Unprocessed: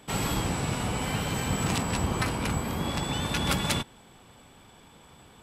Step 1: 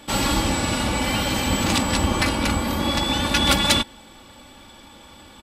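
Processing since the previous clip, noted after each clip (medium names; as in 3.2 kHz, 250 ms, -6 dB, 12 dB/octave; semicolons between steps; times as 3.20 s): peaking EQ 4.2 kHz +4.5 dB 1 oct; comb 3.5 ms, depth 63%; trim +6 dB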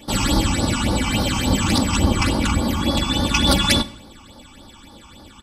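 phase shifter stages 8, 3.5 Hz, lowest notch 510–2600 Hz; reverberation RT60 0.75 s, pre-delay 31 ms, DRR 16.5 dB; trim +3.5 dB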